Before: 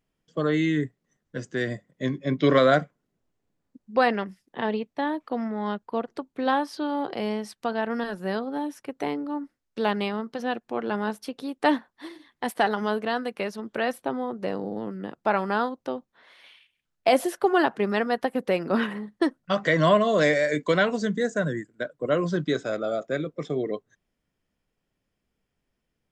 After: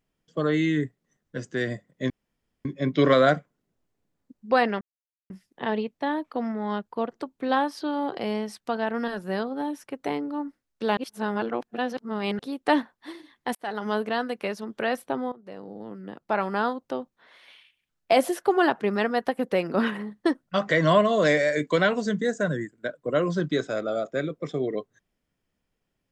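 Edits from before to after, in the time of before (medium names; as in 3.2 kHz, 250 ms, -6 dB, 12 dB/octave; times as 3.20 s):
2.10 s: insert room tone 0.55 s
4.26 s: insert silence 0.49 s
9.93–11.35 s: reverse
12.51–12.90 s: fade in linear
14.28–15.66 s: fade in, from -18 dB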